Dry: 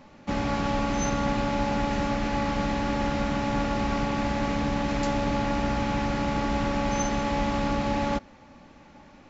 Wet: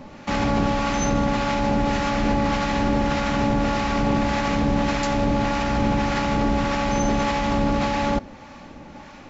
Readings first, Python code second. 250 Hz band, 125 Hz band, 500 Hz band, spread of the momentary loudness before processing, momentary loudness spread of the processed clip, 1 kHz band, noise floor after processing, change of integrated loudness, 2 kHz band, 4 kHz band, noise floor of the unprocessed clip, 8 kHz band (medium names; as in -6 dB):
+5.0 dB, +5.0 dB, +4.5 dB, 1 LU, 3 LU, +5.0 dB, -42 dBFS, +5.0 dB, +5.0 dB, +5.0 dB, -52 dBFS, no reading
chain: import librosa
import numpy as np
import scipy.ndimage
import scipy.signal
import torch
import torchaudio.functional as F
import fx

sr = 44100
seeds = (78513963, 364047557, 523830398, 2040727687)

p1 = fx.over_compress(x, sr, threshold_db=-29.0, ratio=-0.5)
p2 = x + (p1 * 10.0 ** (1.5 / 20.0))
p3 = fx.harmonic_tremolo(p2, sr, hz=1.7, depth_pct=50, crossover_hz=760.0)
y = p3 * 10.0 ** (2.5 / 20.0)